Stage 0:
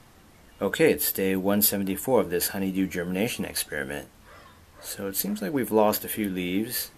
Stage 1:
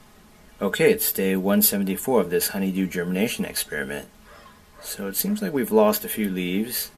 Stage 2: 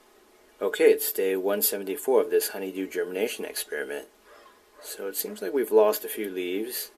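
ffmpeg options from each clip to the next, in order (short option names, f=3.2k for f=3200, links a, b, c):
-af "aecho=1:1:4.8:0.57,volume=1.5dB"
-af "lowshelf=f=240:t=q:w=3:g=-13,volume=-5.5dB"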